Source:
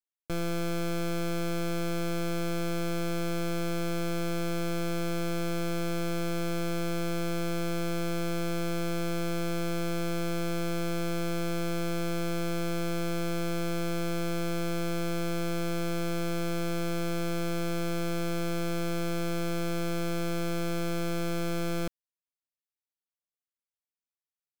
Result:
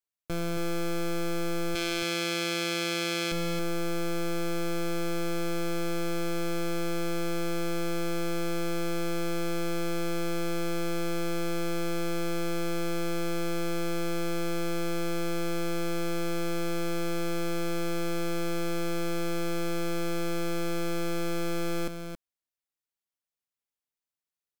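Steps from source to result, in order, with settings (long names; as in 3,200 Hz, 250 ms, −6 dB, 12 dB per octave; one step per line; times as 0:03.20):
0:01.75–0:03.32: meter weighting curve D
on a send: single-tap delay 273 ms −7.5 dB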